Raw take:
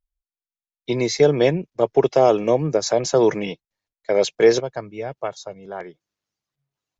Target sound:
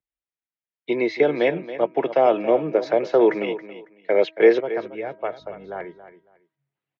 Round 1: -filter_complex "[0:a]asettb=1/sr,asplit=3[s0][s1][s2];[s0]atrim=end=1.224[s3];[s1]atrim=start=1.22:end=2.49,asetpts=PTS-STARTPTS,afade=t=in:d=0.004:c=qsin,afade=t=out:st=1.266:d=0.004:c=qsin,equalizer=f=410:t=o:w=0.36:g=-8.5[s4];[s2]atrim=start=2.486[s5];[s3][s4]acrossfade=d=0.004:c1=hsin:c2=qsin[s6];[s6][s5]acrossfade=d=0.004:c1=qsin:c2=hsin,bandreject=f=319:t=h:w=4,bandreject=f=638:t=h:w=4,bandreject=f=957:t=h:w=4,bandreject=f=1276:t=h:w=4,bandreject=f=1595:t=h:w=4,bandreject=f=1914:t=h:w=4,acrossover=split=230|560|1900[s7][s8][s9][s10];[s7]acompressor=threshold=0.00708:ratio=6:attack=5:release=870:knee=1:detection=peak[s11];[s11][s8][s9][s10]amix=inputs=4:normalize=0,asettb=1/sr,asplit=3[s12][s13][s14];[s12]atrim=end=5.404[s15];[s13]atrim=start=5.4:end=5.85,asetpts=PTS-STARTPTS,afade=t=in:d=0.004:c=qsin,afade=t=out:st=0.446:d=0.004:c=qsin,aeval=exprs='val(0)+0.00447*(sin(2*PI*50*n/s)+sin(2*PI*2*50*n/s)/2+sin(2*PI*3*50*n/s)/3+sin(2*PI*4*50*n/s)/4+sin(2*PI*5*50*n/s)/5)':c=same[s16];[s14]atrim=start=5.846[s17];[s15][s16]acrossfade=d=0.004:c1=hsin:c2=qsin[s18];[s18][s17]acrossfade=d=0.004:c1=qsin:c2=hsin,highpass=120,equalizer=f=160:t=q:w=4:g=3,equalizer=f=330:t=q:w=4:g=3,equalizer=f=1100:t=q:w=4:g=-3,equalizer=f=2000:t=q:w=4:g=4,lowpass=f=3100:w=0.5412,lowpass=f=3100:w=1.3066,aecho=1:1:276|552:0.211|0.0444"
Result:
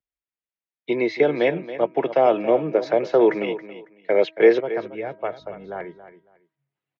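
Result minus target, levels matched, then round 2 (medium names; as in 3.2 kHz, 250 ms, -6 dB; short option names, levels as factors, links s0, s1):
compression: peak gain reduction -5 dB
-filter_complex "[0:a]asettb=1/sr,asplit=3[s0][s1][s2];[s0]atrim=end=1.224[s3];[s1]atrim=start=1.22:end=2.49,asetpts=PTS-STARTPTS,afade=t=in:d=0.004:c=qsin,afade=t=out:st=1.266:d=0.004:c=qsin,equalizer=f=410:t=o:w=0.36:g=-8.5[s4];[s2]atrim=start=2.486[s5];[s3][s4]acrossfade=d=0.004:c1=hsin:c2=qsin[s6];[s6][s5]acrossfade=d=0.004:c1=qsin:c2=hsin,bandreject=f=319:t=h:w=4,bandreject=f=638:t=h:w=4,bandreject=f=957:t=h:w=4,bandreject=f=1276:t=h:w=4,bandreject=f=1595:t=h:w=4,bandreject=f=1914:t=h:w=4,acrossover=split=230|560|1900[s7][s8][s9][s10];[s7]acompressor=threshold=0.00355:ratio=6:attack=5:release=870:knee=1:detection=peak[s11];[s11][s8][s9][s10]amix=inputs=4:normalize=0,asettb=1/sr,asplit=3[s12][s13][s14];[s12]atrim=end=5.404[s15];[s13]atrim=start=5.4:end=5.85,asetpts=PTS-STARTPTS,afade=t=in:d=0.004:c=qsin,afade=t=out:st=0.446:d=0.004:c=qsin,aeval=exprs='val(0)+0.00447*(sin(2*PI*50*n/s)+sin(2*PI*2*50*n/s)/2+sin(2*PI*3*50*n/s)/3+sin(2*PI*4*50*n/s)/4+sin(2*PI*5*50*n/s)/5)':c=same[s16];[s14]atrim=start=5.846[s17];[s15][s16]acrossfade=d=0.004:c1=hsin:c2=qsin[s18];[s18][s17]acrossfade=d=0.004:c1=qsin:c2=hsin,highpass=120,equalizer=f=160:t=q:w=4:g=3,equalizer=f=330:t=q:w=4:g=3,equalizer=f=1100:t=q:w=4:g=-3,equalizer=f=2000:t=q:w=4:g=4,lowpass=f=3100:w=0.5412,lowpass=f=3100:w=1.3066,aecho=1:1:276|552:0.211|0.0444"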